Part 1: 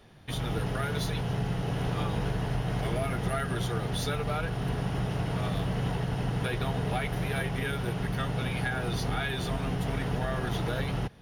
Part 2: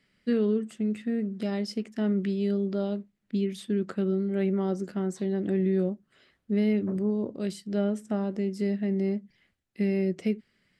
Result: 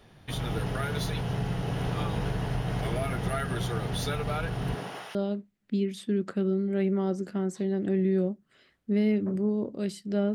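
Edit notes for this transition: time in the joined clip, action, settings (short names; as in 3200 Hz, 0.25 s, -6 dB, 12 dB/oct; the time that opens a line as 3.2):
part 1
4.74–5.15 HPF 160 Hz -> 1400 Hz
5.15 switch to part 2 from 2.76 s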